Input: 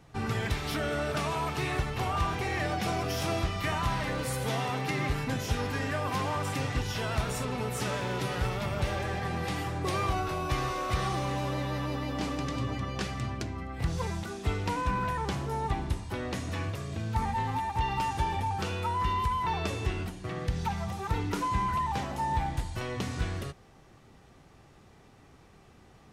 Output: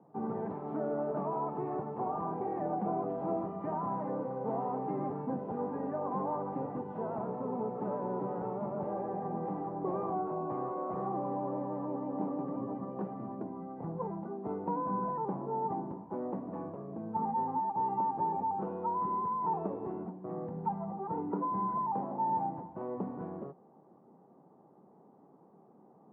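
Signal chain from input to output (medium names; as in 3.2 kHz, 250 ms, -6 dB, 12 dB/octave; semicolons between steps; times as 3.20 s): Chebyshev band-pass 180–950 Hz, order 3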